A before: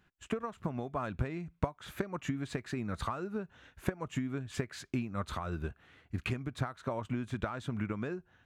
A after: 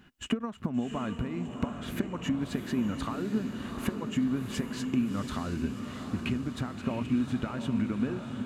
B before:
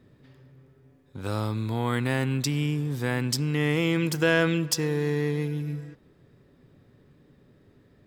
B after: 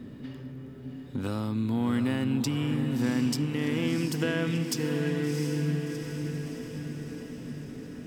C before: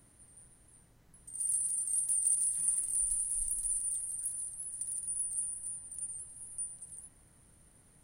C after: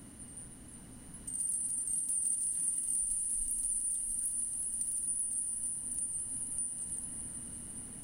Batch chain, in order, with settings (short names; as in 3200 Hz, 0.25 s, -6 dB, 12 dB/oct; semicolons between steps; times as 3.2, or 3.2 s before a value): compressor 2.5:1, threshold -47 dBFS; small resonant body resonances 240/2900 Hz, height 12 dB, ringing for 45 ms; on a send: diffused feedback echo 0.705 s, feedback 61%, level -6.5 dB; on the sum: gain +9 dB